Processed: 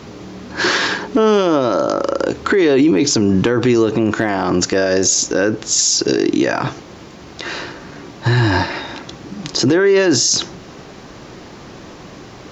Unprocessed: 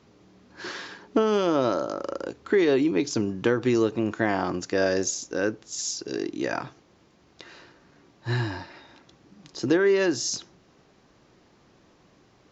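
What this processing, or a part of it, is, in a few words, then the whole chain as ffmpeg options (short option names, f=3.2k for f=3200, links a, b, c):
loud club master: -af "acompressor=threshold=-28dB:ratio=2,asoftclip=type=hard:threshold=-17dB,alimiter=level_in=27.5dB:limit=-1dB:release=50:level=0:latency=1,volume=-5dB"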